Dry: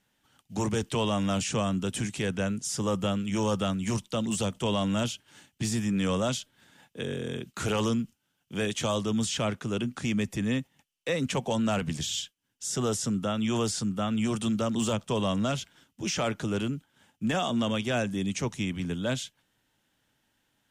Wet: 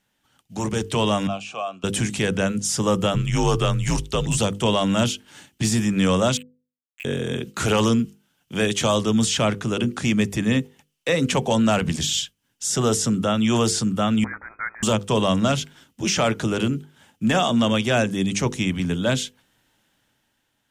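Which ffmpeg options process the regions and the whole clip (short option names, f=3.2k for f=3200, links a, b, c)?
-filter_complex "[0:a]asettb=1/sr,asplit=3[a][b][c];[a]atrim=end=1.274[d];[b]atrim=start=1.27:end=1.84,asetpts=PTS-STARTPTS,afade=t=in:d=0.004:c=qsin,afade=t=out:st=0.566:d=0.004:c=qsin,asplit=3[e][f][g];[e]bandpass=f=730:t=q:w=8,volume=0dB[h];[f]bandpass=f=1.09k:t=q:w=8,volume=-6dB[i];[g]bandpass=f=2.44k:t=q:w=8,volume=-9dB[j];[h][i][j]amix=inputs=3:normalize=0,highshelf=f=2.2k:g=9.5[k];[c]atrim=start=1.836[l];[d][k]acrossfade=d=0.004:c1=hsin:c2=qsin[m];[m][l]acrossfade=d=0.004:c1=qsin:c2=hsin,asettb=1/sr,asplit=3[n][o][p];[n]atrim=end=3.144[q];[o]atrim=start=3.14:end=4.37,asetpts=PTS-STARTPTS,afade=t=in:d=0.004:c=qsin,afade=t=out:st=1.226:d=0.004:c=qsin,lowpass=f=3.6k:p=1,aemphasis=mode=production:type=cd,afreqshift=-72[r];[p]atrim=start=4.366[s];[q][r]acrossfade=d=0.004:c1=hsin:c2=qsin[t];[t][s]acrossfade=d=0.004:c1=qsin:c2=hsin,asettb=1/sr,asplit=3[u][v][w];[u]atrim=end=6.374[x];[v]atrim=start=6.37:end=7.05,asetpts=PTS-STARTPTS,afade=t=in:d=0.004:c=qsin,afade=t=out:st=0.676:d=0.004:c=qsin,asuperpass=centerf=2400:order=8:qfactor=2.8,acrusher=bits=7:mix=0:aa=0.5[y];[w]atrim=start=7.046[z];[x][y]acrossfade=d=0.004:c1=hsin:c2=qsin[aa];[aa][z]acrossfade=d=0.004:c1=qsin:c2=hsin,asettb=1/sr,asplit=3[ab][ac][ad];[ab]atrim=end=14.244[ae];[ac]atrim=start=14.24:end=14.83,asetpts=PTS-STARTPTS,afade=t=in:d=0.004:c=qsin,afade=t=out:st=0.586:d=0.004:c=qsin,highpass=f=840:w=0.5412,highpass=f=840:w=1.3066,lowpass=f=2.3k:t=q:w=0.5098,lowpass=f=2.3k:t=q:w=0.6013,lowpass=f=2.3k:t=q:w=0.9,lowpass=f=2.3k:t=q:w=2.563,afreqshift=-2700[af];[ad]atrim=start=14.826[ag];[ae][af]acrossfade=d=0.004:c1=hsin:c2=qsin[ah];[ah][ag]acrossfade=d=0.004:c1=qsin:c2=hsin,bandreject=f=50:t=h:w=6,bandreject=f=100:t=h:w=6,bandreject=f=150:t=h:w=6,bandreject=f=200:t=h:w=6,bandreject=f=250:t=h:w=6,bandreject=f=300:t=h:w=6,bandreject=f=350:t=h:w=6,bandreject=f=400:t=h:w=6,bandreject=f=450:t=h:w=6,bandreject=f=500:t=h:w=6,dynaudnorm=f=190:g=9:m=7dB,volume=1.5dB"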